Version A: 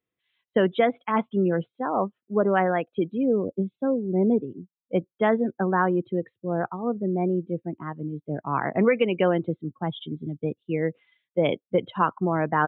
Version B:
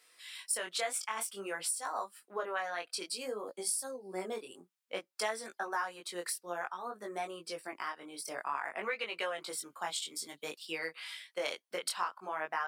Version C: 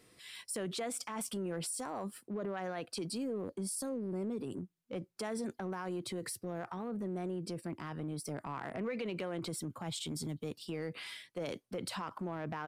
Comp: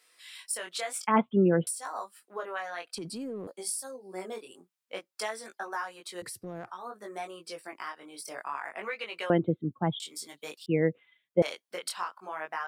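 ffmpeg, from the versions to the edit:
-filter_complex "[0:a]asplit=3[a][b][c];[2:a]asplit=2[d][e];[1:a]asplit=6[f][g][h][i][j][k];[f]atrim=end=1.072[l];[a]atrim=start=1.068:end=1.672[m];[g]atrim=start=1.668:end=2.952[n];[d]atrim=start=2.948:end=3.472[o];[h]atrim=start=3.468:end=6.222[p];[e]atrim=start=6.218:end=6.712[q];[i]atrim=start=6.708:end=9.302[r];[b]atrim=start=9.298:end=10.002[s];[j]atrim=start=9.998:end=10.662[t];[c]atrim=start=10.658:end=11.422[u];[k]atrim=start=11.418[v];[l][m]acrossfade=d=0.004:c1=hsin:c2=hsin[w];[w][n]acrossfade=d=0.004:c1=hsin:c2=hsin[x];[x][o]acrossfade=d=0.004:c1=hsin:c2=hsin[y];[y][p]acrossfade=d=0.004:c1=hsin:c2=hsin[z];[z][q]acrossfade=d=0.004:c1=hsin:c2=hsin[aa];[aa][r]acrossfade=d=0.004:c1=hsin:c2=hsin[ab];[ab][s]acrossfade=d=0.004:c1=hsin:c2=hsin[ac];[ac][t]acrossfade=d=0.004:c1=hsin:c2=hsin[ad];[ad][u]acrossfade=d=0.004:c1=hsin:c2=hsin[ae];[ae][v]acrossfade=d=0.004:c1=hsin:c2=hsin"

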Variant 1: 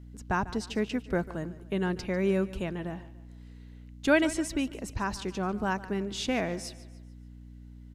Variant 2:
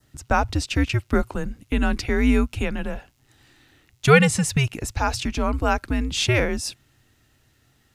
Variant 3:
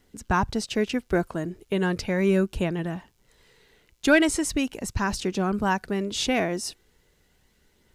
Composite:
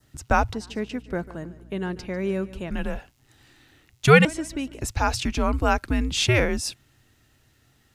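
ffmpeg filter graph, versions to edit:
-filter_complex "[0:a]asplit=2[a][b];[1:a]asplit=3[c][d][e];[c]atrim=end=0.532[f];[a]atrim=start=0.528:end=2.712[g];[d]atrim=start=2.708:end=4.252[h];[b]atrim=start=4.248:end=4.812[i];[e]atrim=start=4.808[j];[f][g]acrossfade=d=0.004:c1=hsin:c2=hsin[k];[k][h]acrossfade=d=0.004:c1=hsin:c2=hsin[l];[l][i]acrossfade=d=0.004:c1=hsin:c2=hsin[m];[m][j]acrossfade=d=0.004:c1=hsin:c2=hsin"

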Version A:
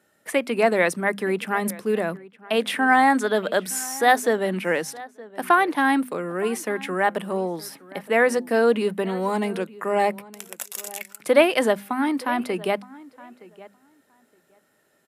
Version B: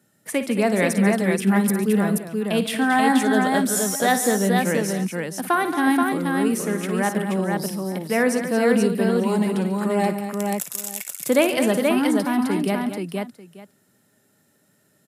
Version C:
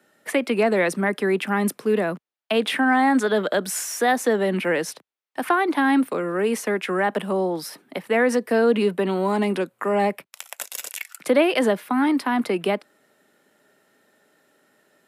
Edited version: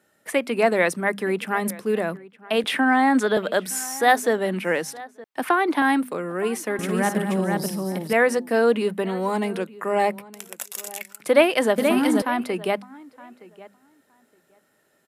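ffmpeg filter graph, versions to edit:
-filter_complex "[2:a]asplit=2[a][b];[1:a]asplit=2[c][d];[0:a]asplit=5[e][f][g][h][i];[e]atrim=end=2.642[j];[a]atrim=start=2.638:end=3.372[k];[f]atrim=start=3.368:end=5.242[l];[b]atrim=start=5.238:end=5.822[m];[g]atrim=start=5.818:end=6.792[n];[c]atrim=start=6.788:end=8.132[o];[h]atrim=start=8.128:end=11.782[p];[d]atrim=start=11.778:end=12.222[q];[i]atrim=start=12.218[r];[j][k]acrossfade=d=0.004:c1=hsin:c2=hsin[s];[s][l]acrossfade=d=0.004:c1=hsin:c2=hsin[t];[t][m]acrossfade=d=0.004:c1=hsin:c2=hsin[u];[u][n]acrossfade=d=0.004:c1=hsin:c2=hsin[v];[v][o]acrossfade=d=0.004:c1=hsin:c2=hsin[w];[w][p]acrossfade=d=0.004:c1=hsin:c2=hsin[x];[x][q]acrossfade=d=0.004:c1=hsin:c2=hsin[y];[y][r]acrossfade=d=0.004:c1=hsin:c2=hsin"

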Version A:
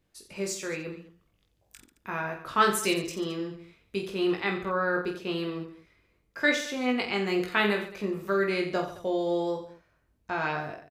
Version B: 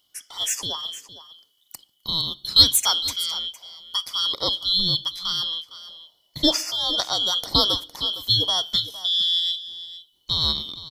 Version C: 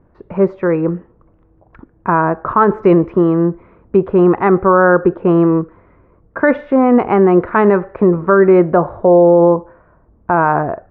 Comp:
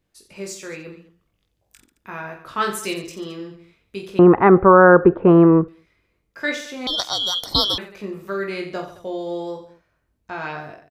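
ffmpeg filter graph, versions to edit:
-filter_complex "[0:a]asplit=3[a][b][c];[a]atrim=end=4.192[d];[2:a]atrim=start=4.188:end=5.682[e];[b]atrim=start=5.678:end=6.872[f];[1:a]atrim=start=6.868:end=7.782[g];[c]atrim=start=7.778[h];[d][e]acrossfade=d=0.004:c1=hsin:c2=hsin[i];[i][f]acrossfade=d=0.004:c1=hsin:c2=hsin[j];[j][g]acrossfade=d=0.004:c1=hsin:c2=hsin[k];[k][h]acrossfade=d=0.004:c1=hsin:c2=hsin"

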